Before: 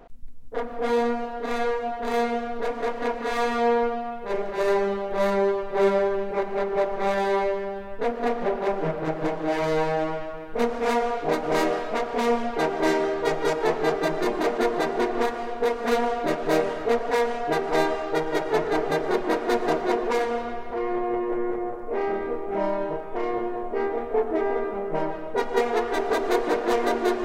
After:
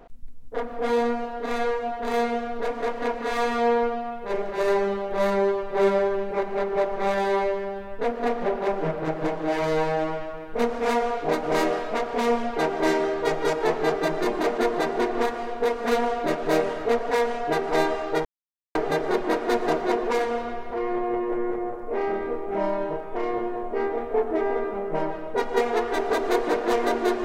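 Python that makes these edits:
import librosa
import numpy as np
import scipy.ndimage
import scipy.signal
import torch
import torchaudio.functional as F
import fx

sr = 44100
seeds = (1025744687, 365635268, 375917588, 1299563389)

y = fx.edit(x, sr, fx.silence(start_s=18.25, length_s=0.5), tone=tone)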